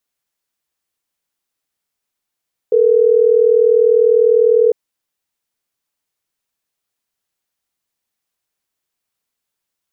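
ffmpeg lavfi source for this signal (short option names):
-f lavfi -i "aevalsrc='0.282*(sin(2*PI*440*t)+sin(2*PI*480*t))*clip(min(mod(t,6),2-mod(t,6))/0.005,0,1)':d=3.12:s=44100"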